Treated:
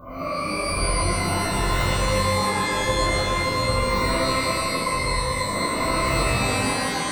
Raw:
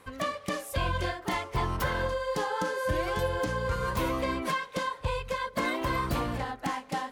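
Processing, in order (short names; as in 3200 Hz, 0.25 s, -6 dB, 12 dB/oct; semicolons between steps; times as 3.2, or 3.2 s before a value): spectral swells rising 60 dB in 0.74 s; brick-wall FIR band-stop 1500–14000 Hz; shimmer reverb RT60 1.7 s, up +12 st, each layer -2 dB, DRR -8.5 dB; gain -5.5 dB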